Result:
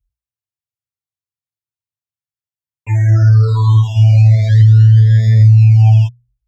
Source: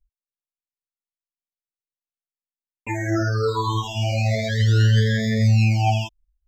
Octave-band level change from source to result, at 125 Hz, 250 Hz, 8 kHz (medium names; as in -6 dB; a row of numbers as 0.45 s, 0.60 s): +13.0 dB, -0.5 dB, no reading